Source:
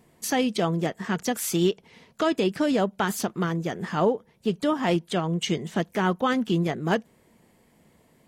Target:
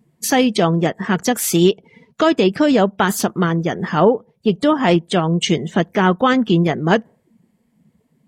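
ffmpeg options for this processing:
ffmpeg -i in.wav -af "afftdn=noise_reduction=18:noise_floor=-47,volume=9dB" out.wav

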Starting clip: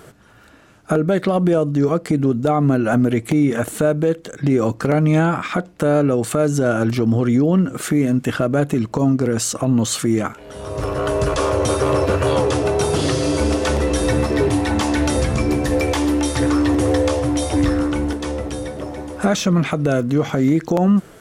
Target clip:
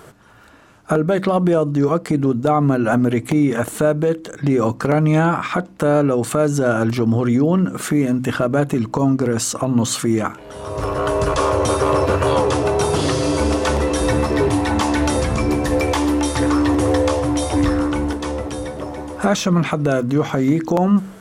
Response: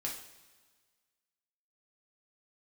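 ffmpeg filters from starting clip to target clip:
-af "equalizer=frequency=1000:width_type=o:width=0.66:gain=5,bandreject=frequency=64.26:width_type=h:width=4,bandreject=frequency=128.52:width_type=h:width=4,bandreject=frequency=192.78:width_type=h:width=4,bandreject=frequency=257.04:width_type=h:width=4,bandreject=frequency=321.3:width_type=h:width=4"

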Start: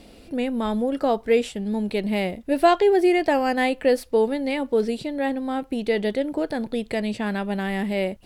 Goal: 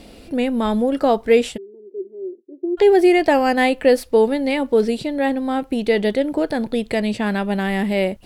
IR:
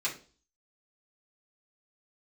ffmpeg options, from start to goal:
-filter_complex "[0:a]asplit=3[link_01][link_02][link_03];[link_01]afade=type=out:start_time=1.56:duration=0.02[link_04];[link_02]asuperpass=centerf=370:order=4:qfactor=7.1,afade=type=in:start_time=1.56:duration=0.02,afade=type=out:start_time=2.77:duration=0.02[link_05];[link_03]afade=type=in:start_time=2.77:duration=0.02[link_06];[link_04][link_05][link_06]amix=inputs=3:normalize=0,volume=5dB"

